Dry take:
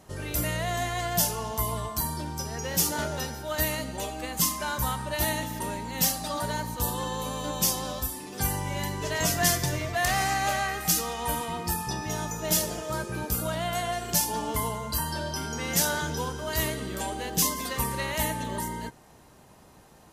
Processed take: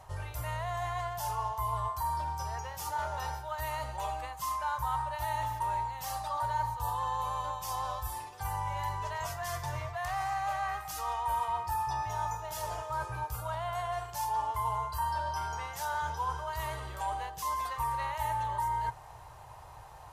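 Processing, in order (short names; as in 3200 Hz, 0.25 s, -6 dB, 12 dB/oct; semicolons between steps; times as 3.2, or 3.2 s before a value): dynamic EQ 1100 Hz, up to +6 dB, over -43 dBFS, Q 1.4; reverse; compressor 6:1, threshold -38 dBFS, peak gain reduction 18.5 dB; reverse; EQ curve 120 Hz 0 dB, 210 Hz -28 dB, 910 Hz +4 dB, 1400 Hz -4 dB, 6100 Hz -10 dB; gain +7 dB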